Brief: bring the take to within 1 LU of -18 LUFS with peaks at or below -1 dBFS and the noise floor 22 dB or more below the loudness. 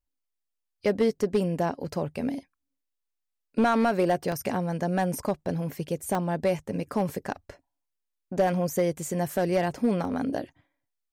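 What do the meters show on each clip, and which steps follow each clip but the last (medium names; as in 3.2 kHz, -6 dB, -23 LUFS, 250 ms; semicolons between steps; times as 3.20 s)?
clipped samples 0.4%; clipping level -16.0 dBFS; dropouts 3; longest dropout 1.2 ms; loudness -28.0 LUFS; peak level -16.0 dBFS; loudness target -18.0 LUFS
-> clip repair -16 dBFS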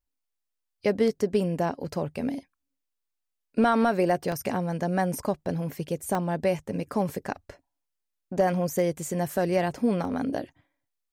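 clipped samples 0.0%; dropouts 3; longest dropout 1.2 ms
-> interpolate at 4.32/6.15/10.05 s, 1.2 ms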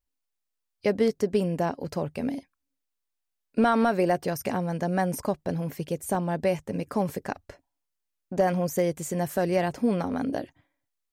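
dropouts 0; loudness -27.5 LUFS; peak level -11.5 dBFS; loudness target -18.0 LUFS
-> trim +9.5 dB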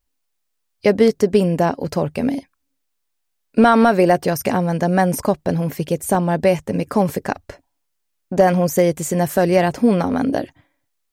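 loudness -18.0 LUFS; peak level -2.0 dBFS; noise floor -73 dBFS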